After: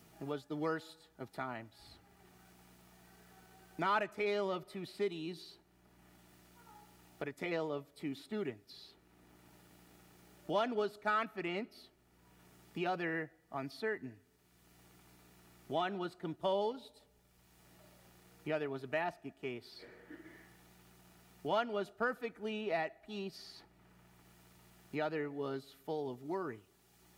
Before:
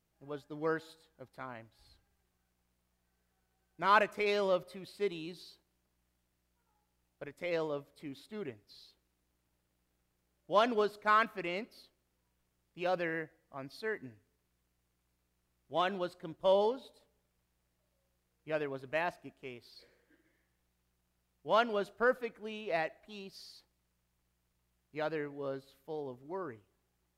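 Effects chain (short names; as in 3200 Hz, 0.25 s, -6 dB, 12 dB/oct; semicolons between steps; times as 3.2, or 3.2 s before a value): notch comb 530 Hz; three-band squash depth 70%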